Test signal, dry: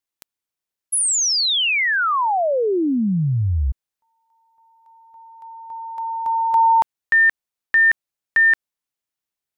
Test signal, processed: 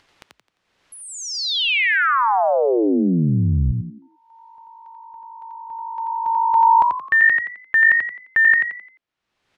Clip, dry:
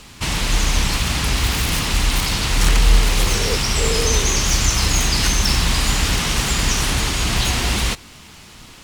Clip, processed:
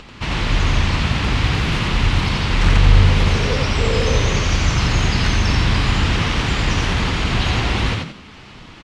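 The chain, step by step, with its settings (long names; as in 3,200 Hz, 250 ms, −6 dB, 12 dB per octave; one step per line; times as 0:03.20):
low-pass filter 3,200 Hz 12 dB per octave
upward compression, threshold −36 dBFS
echo with shifted repeats 87 ms, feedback 35%, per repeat +51 Hz, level −3.5 dB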